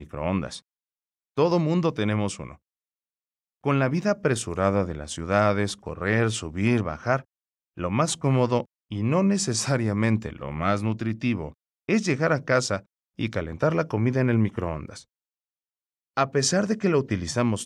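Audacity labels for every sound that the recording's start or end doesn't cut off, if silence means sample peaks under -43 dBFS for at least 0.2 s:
1.370000	2.550000	sound
3.640000	7.220000	sound
7.770000	8.640000	sound
8.910000	11.520000	sound
11.890000	12.810000	sound
13.190000	15.020000	sound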